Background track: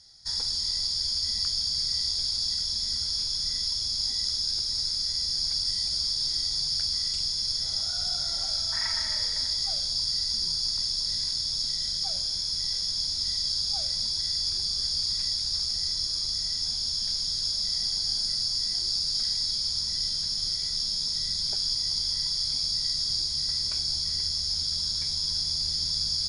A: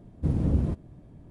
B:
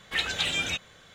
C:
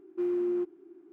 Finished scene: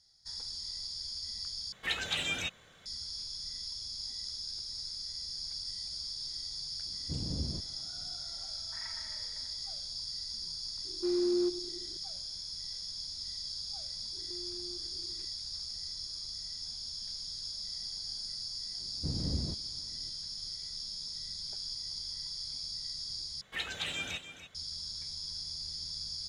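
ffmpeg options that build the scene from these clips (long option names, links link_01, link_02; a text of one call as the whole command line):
ffmpeg -i bed.wav -i cue0.wav -i cue1.wav -i cue2.wav -filter_complex "[2:a]asplit=2[link_01][link_02];[1:a]asplit=2[link_03][link_04];[3:a]asplit=2[link_05][link_06];[0:a]volume=-12dB[link_07];[link_05]asplit=2[link_08][link_09];[link_09]adelay=96,lowpass=frequency=2000:poles=1,volume=-17dB,asplit=2[link_10][link_11];[link_11]adelay=96,lowpass=frequency=2000:poles=1,volume=0.55,asplit=2[link_12][link_13];[link_13]adelay=96,lowpass=frequency=2000:poles=1,volume=0.55,asplit=2[link_14][link_15];[link_15]adelay=96,lowpass=frequency=2000:poles=1,volume=0.55,asplit=2[link_16][link_17];[link_17]adelay=96,lowpass=frequency=2000:poles=1,volume=0.55[link_18];[link_08][link_10][link_12][link_14][link_16][link_18]amix=inputs=6:normalize=0[link_19];[link_06]acompressor=threshold=-42dB:ratio=6:attack=3.2:release=140:knee=1:detection=peak[link_20];[link_02]aecho=1:1:291:0.266[link_21];[link_07]asplit=3[link_22][link_23][link_24];[link_22]atrim=end=1.724[link_25];[link_01]atrim=end=1.14,asetpts=PTS-STARTPTS,volume=-5.5dB[link_26];[link_23]atrim=start=2.856:end=23.414[link_27];[link_21]atrim=end=1.14,asetpts=PTS-STARTPTS,volume=-9dB[link_28];[link_24]atrim=start=24.546[link_29];[link_03]atrim=end=1.3,asetpts=PTS-STARTPTS,volume=-12.5dB,afade=type=in:duration=0.004:curve=hsin,afade=type=out:start_time=1.296:duration=0.004:curve=hsin,adelay=6860[link_30];[link_19]atrim=end=1.12,asetpts=PTS-STARTPTS,volume=-2dB,afade=type=in:duration=0.004:curve=hsin,afade=type=out:start_time=1.116:duration=0.004:curve=hsin,adelay=10850[link_31];[link_20]atrim=end=1.12,asetpts=PTS-STARTPTS,volume=-6.5dB,afade=type=in:duration=0.004:curve=hsin,afade=type=out:start_time=1.116:duration=0.004:curve=hsin,adelay=14130[link_32];[link_04]atrim=end=1.3,asetpts=PTS-STARTPTS,volume=-10.5dB,afade=type=in:duration=0.004:curve=hsin,afade=type=out:start_time=1.296:duration=0.004:curve=hsin,adelay=18800[link_33];[link_25][link_26]acrossfade=duration=0.004:curve1=hsin:curve2=hsin[link_34];[link_34][link_27]acrossfade=duration=0.004:curve1=hsin:curve2=hsin[link_35];[link_35][link_28]acrossfade=duration=0.004:curve1=hsin:curve2=hsin[link_36];[link_36][link_29]acrossfade=duration=0.004:curve1=hsin:curve2=hsin[link_37];[link_37][link_30][link_31][link_32][link_33]amix=inputs=5:normalize=0" out.wav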